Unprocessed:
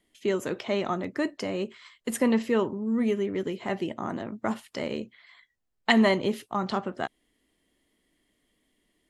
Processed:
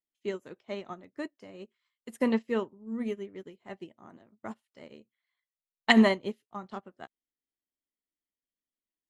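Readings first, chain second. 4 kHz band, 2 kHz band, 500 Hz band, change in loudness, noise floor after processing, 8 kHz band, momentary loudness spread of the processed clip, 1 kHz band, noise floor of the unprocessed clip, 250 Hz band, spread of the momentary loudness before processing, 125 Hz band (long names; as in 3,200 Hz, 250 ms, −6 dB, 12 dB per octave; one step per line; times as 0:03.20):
−1.5 dB, −1.0 dB, −5.5 dB, −1.0 dB, below −85 dBFS, below −10 dB, 24 LU, −5.0 dB, −75 dBFS, −3.0 dB, 11 LU, can't be measured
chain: expander for the loud parts 2.5 to 1, over −39 dBFS
level +2.5 dB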